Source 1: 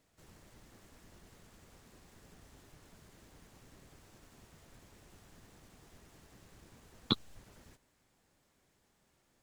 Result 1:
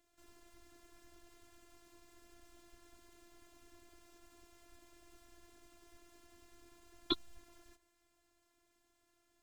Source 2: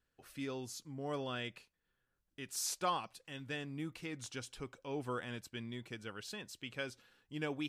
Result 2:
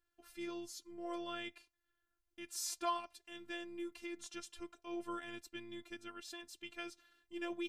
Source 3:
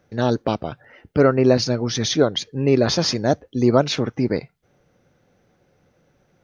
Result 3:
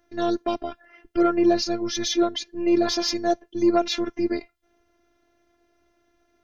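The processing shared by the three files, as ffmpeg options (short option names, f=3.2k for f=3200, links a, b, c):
-af "afftfilt=real='hypot(re,im)*cos(PI*b)':imag='0':win_size=512:overlap=0.75,acontrast=68,volume=-6dB"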